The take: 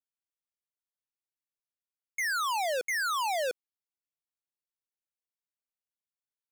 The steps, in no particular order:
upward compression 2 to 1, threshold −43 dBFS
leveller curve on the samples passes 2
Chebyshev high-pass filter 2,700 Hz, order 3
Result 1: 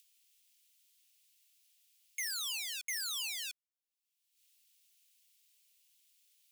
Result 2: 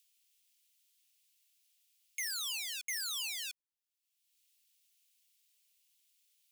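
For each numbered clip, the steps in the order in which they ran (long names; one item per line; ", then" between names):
upward compression, then leveller curve on the samples, then Chebyshev high-pass filter
leveller curve on the samples, then Chebyshev high-pass filter, then upward compression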